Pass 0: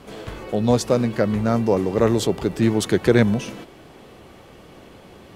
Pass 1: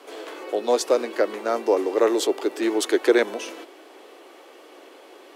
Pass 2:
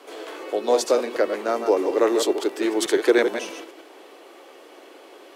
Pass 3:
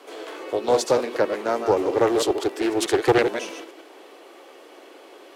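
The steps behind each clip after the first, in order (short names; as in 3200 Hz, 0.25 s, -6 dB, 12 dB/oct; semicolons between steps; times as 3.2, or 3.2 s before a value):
steep high-pass 300 Hz 48 dB/oct
reverse delay 0.106 s, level -7 dB
Doppler distortion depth 0.35 ms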